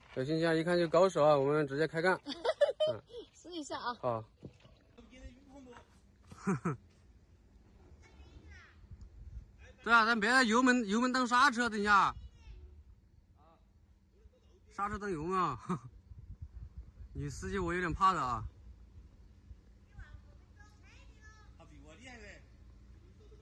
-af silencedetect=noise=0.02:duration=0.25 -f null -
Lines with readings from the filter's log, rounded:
silence_start: 2.96
silence_end: 3.57 | silence_duration: 0.61
silence_start: 4.19
silence_end: 6.47 | silence_duration: 2.29
silence_start: 6.72
silence_end: 9.86 | silence_duration: 3.14
silence_start: 12.10
silence_end: 14.79 | silence_duration: 2.68
silence_start: 15.76
silence_end: 17.18 | silence_duration: 1.42
silence_start: 18.46
silence_end: 23.41 | silence_duration: 4.96